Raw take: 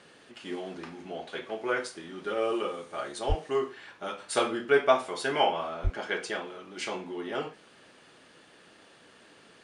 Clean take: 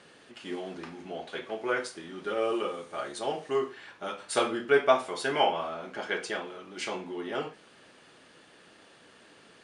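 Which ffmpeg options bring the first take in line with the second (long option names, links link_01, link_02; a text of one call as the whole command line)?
ffmpeg -i in.wav -filter_complex "[0:a]asplit=3[link_01][link_02][link_03];[link_01]afade=type=out:start_time=3.28:duration=0.02[link_04];[link_02]highpass=frequency=140:width=0.5412,highpass=frequency=140:width=1.3066,afade=type=in:start_time=3.28:duration=0.02,afade=type=out:start_time=3.4:duration=0.02[link_05];[link_03]afade=type=in:start_time=3.4:duration=0.02[link_06];[link_04][link_05][link_06]amix=inputs=3:normalize=0,asplit=3[link_07][link_08][link_09];[link_07]afade=type=out:start_time=5.83:duration=0.02[link_10];[link_08]highpass=frequency=140:width=0.5412,highpass=frequency=140:width=1.3066,afade=type=in:start_time=5.83:duration=0.02,afade=type=out:start_time=5.95:duration=0.02[link_11];[link_09]afade=type=in:start_time=5.95:duration=0.02[link_12];[link_10][link_11][link_12]amix=inputs=3:normalize=0" out.wav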